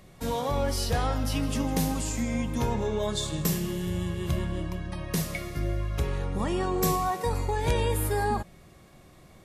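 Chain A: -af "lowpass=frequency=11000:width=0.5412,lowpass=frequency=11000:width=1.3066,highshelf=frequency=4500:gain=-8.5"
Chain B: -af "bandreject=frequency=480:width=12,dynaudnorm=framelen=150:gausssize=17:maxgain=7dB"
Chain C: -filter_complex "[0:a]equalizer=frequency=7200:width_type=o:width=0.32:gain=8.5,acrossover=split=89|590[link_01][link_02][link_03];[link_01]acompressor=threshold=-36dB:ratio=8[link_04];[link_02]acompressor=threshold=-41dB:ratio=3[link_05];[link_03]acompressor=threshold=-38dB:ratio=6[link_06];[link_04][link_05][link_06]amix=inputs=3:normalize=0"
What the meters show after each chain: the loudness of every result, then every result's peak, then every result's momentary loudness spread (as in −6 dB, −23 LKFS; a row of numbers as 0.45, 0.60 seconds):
−29.5, −23.0, −36.0 LKFS; −14.0, −6.0, −18.0 dBFS; 6, 7, 4 LU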